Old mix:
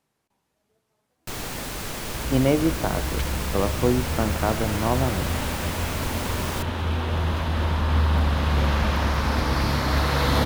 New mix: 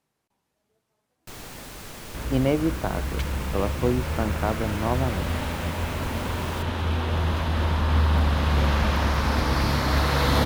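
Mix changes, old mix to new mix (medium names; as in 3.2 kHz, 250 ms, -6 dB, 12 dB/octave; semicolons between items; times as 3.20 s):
speech: send off; first sound -8.0 dB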